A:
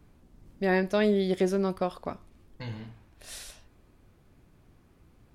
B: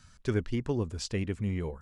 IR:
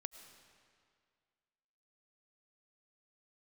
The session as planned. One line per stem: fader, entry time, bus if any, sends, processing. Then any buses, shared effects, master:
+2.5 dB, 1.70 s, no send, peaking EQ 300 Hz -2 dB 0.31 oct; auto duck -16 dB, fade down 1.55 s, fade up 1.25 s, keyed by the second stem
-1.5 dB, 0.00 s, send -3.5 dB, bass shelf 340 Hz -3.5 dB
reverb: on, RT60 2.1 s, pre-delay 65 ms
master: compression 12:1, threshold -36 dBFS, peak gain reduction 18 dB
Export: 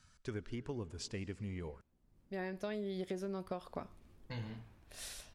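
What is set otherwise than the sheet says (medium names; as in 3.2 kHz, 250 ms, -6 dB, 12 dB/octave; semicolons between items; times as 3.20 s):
stem A +2.5 dB -> -4.5 dB; stem B -1.5 dB -> -10.5 dB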